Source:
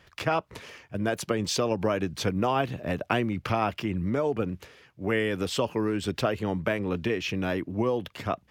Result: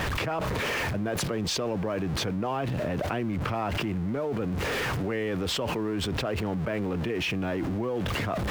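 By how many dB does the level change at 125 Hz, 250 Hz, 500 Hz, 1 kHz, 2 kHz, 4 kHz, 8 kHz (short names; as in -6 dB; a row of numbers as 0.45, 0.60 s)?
+2.0, -0.5, -2.0, -2.0, +1.0, +2.5, +1.0 dB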